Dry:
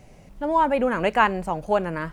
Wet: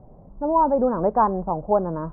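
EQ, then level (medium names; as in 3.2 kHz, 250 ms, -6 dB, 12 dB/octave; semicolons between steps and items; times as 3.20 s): steep low-pass 1.1 kHz 36 dB/octave; +2.0 dB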